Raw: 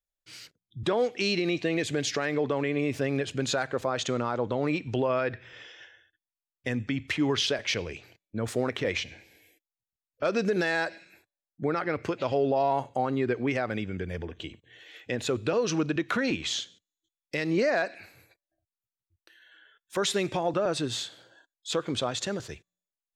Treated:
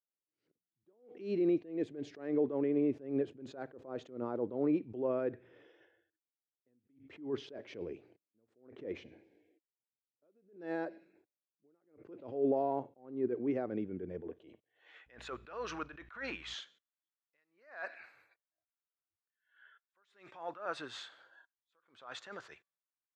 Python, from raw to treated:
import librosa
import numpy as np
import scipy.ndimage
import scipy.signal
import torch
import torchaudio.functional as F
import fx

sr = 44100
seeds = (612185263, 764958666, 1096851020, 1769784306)

y = fx.filter_sweep_bandpass(x, sr, from_hz=340.0, to_hz=1300.0, start_s=14.15, end_s=15.09, q=1.7)
y = fx.dmg_buzz(y, sr, base_hz=60.0, harmonics=37, level_db=-59.0, tilt_db=-9, odd_only=False, at=(15.06, 16.53), fade=0.02)
y = fx.attack_slew(y, sr, db_per_s=130.0)